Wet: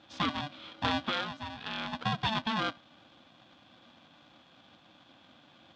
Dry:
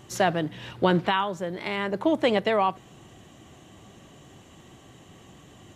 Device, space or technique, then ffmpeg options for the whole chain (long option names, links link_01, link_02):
ring modulator pedal into a guitar cabinet: -af "aeval=exprs='val(0)*sgn(sin(2*PI*440*n/s))':channel_layout=same,highpass=110,equalizer=frequency=240:width_type=q:width=4:gain=3,equalizer=frequency=370:width_type=q:width=4:gain=-7,equalizer=frequency=600:width_type=q:width=4:gain=-6,equalizer=frequency=2100:width_type=q:width=4:gain=-4,equalizer=frequency=3400:width_type=q:width=4:gain=8,lowpass=frequency=4600:width=0.5412,lowpass=frequency=4600:width=1.3066,volume=-8dB"